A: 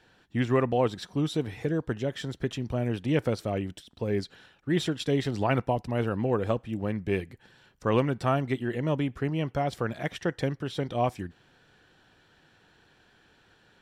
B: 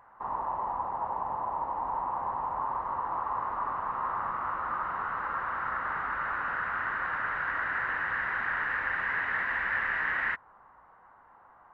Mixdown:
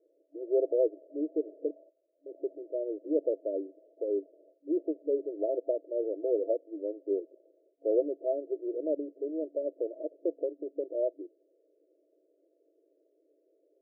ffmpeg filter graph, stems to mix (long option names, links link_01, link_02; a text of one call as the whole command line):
ffmpeg -i stem1.wav -i stem2.wav -filter_complex "[0:a]highpass=310,volume=1dB,asplit=3[link_01][link_02][link_03];[link_01]atrim=end=1.71,asetpts=PTS-STARTPTS,afade=type=out:start_time=1.706:duration=0.004:curve=hsin[link_04];[link_02]atrim=start=1.71:end=2.26,asetpts=PTS-STARTPTS,volume=0[link_05];[link_03]atrim=start=2.26,asetpts=PTS-STARTPTS,afade=type=in:duration=0.004:curve=hsin[link_06];[link_04][link_05][link_06]concat=n=3:v=0:a=1,asplit=2[link_07][link_08];[1:a]acompressor=threshold=-34dB:ratio=6,tremolo=f=200:d=0.974,volume=-3.5dB[link_09];[link_08]apad=whole_len=517472[link_10];[link_09][link_10]sidechaingate=range=-18dB:threshold=-56dB:ratio=16:detection=peak[link_11];[link_07][link_11]amix=inputs=2:normalize=0,afftfilt=real='re*between(b*sr/4096,280,670)':imag='im*between(b*sr/4096,280,670)':win_size=4096:overlap=0.75" out.wav